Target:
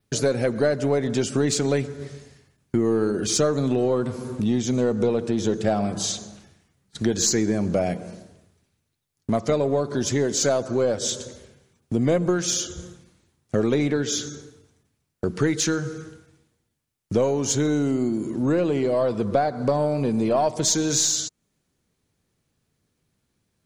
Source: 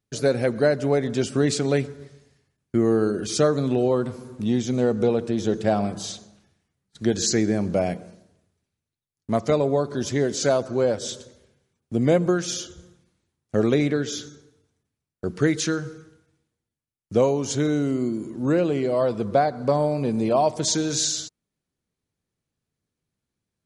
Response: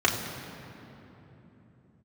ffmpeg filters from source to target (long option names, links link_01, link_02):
-filter_complex "[0:a]adynamicequalizer=threshold=0.00562:dfrequency=6800:dqfactor=3.2:tfrequency=6800:tqfactor=3.2:attack=5:release=100:ratio=0.375:range=2.5:mode=boostabove:tftype=bell,asplit=2[link_01][link_02];[link_02]aeval=exprs='clip(val(0),-1,0.0531)':channel_layout=same,volume=-10dB[link_03];[link_01][link_03]amix=inputs=2:normalize=0,acompressor=threshold=-35dB:ratio=2,volume=8dB"